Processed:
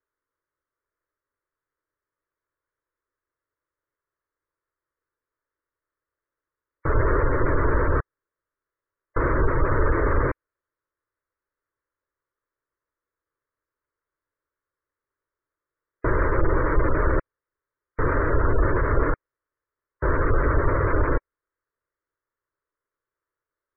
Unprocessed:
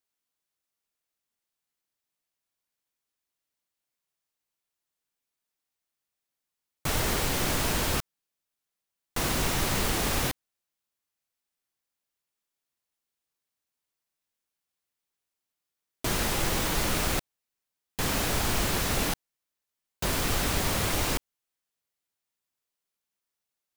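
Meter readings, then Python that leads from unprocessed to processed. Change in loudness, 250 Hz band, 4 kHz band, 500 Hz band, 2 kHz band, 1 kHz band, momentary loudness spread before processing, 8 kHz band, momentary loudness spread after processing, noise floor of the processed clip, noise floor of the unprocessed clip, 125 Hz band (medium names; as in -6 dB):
+3.5 dB, +5.0 dB, under -40 dB, +9.0 dB, +3.5 dB, +6.0 dB, 7 LU, under -40 dB, 7 LU, under -85 dBFS, under -85 dBFS, +8.0 dB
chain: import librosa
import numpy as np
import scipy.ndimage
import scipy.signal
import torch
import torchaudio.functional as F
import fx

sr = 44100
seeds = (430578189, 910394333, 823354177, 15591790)

y = fx.halfwave_hold(x, sr)
y = scipy.signal.sosfilt(scipy.signal.cheby2(4, 70, 8000.0, 'lowpass', fs=sr, output='sos'), y)
y = fx.spec_gate(y, sr, threshold_db=-25, keep='strong')
y = fx.fixed_phaser(y, sr, hz=760.0, stages=6)
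y = y * 10.0 ** (5.0 / 20.0)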